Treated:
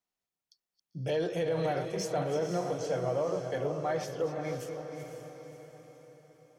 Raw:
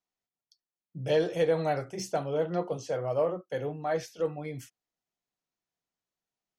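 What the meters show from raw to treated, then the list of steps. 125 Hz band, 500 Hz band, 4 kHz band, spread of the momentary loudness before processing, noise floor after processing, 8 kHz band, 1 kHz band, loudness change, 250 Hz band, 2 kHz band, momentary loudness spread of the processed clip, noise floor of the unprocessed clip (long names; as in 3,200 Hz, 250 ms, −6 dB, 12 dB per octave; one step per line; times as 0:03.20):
0.0 dB, −2.0 dB, −1.0 dB, 12 LU, below −85 dBFS, +1.0 dB, −1.0 dB, −2.0 dB, −0.5 dB, −1.5 dB, 16 LU, below −85 dBFS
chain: delay that plays each chunk backwards 219 ms, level −11 dB
brickwall limiter −23 dBFS, peak gain reduction 8 dB
feedback delay with all-pass diffusion 530 ms, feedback 47%, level −7 dB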